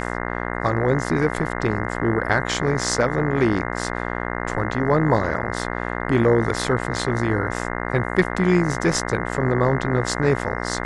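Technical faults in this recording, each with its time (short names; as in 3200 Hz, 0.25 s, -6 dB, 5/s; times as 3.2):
buzz 60 Hz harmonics 35 -27 dBFS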